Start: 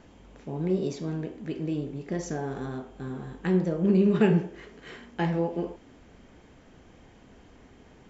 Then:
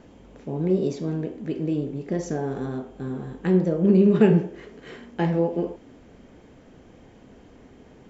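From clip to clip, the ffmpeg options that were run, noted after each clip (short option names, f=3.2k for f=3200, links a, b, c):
-af "equalizer=f=125:t=o:w=1:g=3,equalizer=f=250:t=o:w=1:g=4,equalizer=f=500:t=o:w=1:g=5"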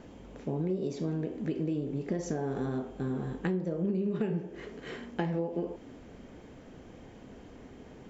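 -af "acompressor=threshold=-28dB:ratio=8"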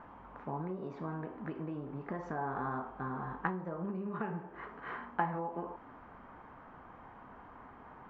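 -af "lowpass=f=1.1k:t=q:w=1.6,lowshelf=f=710:t=q:w=1.5:g=-12.5,volume=5dB"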